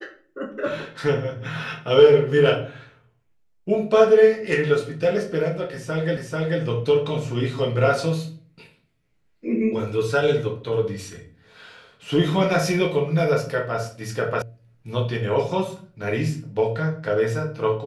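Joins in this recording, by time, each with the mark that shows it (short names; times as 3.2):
6.17 repeat of the last 0.44 s
14.42 sound cut off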